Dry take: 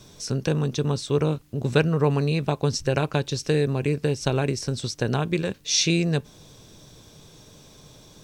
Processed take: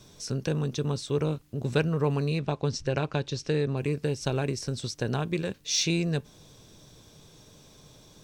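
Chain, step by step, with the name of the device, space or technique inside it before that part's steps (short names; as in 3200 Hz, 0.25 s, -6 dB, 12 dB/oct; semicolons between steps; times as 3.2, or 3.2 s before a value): parallel distortion (in parallel at -13 dB: hard clip -21 dBFS, distortion -9 dB); 2.39–3.77 on the sum: LPF 6100 Hz 12 dB/oct; gain -6 dB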